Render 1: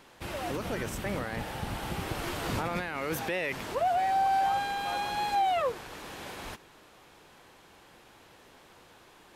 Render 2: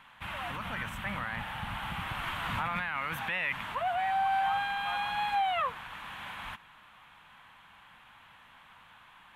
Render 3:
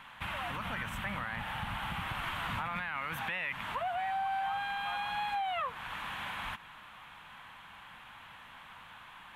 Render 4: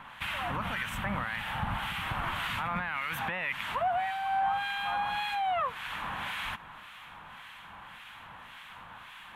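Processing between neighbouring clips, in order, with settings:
drawn EQ curve 210 Hz 0 dB, 390 Hz −17 dB, 1,000 Hz +8 dB, 3,300 Hz +6 dB, 5,000 Hz −12 dB, 10,000 Hz −5 dB; level −4 dB
downward compressor 2.5 to 1, threshold −41 dBFS, peak gain reduction 10.5 dB; level +4.5 dB
two-band tremolo in antiphase 1.8 Hz, depth 70%, crossover 1,500 Hz; level +7 dB

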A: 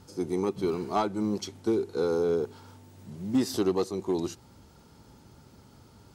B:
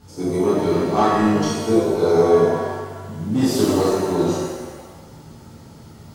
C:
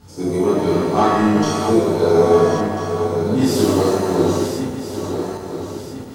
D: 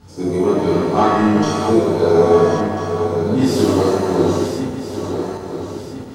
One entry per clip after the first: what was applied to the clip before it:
reverb with rising layers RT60 1.3 s, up +7 semitones, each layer −8 dB, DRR −9 dB
feedback delay that plays each chunk backwards 672 ms, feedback 61%, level −8 dB; level +1.5 dB
high-shelf EQ 8,500 Hz −9 dB; level +1 dB

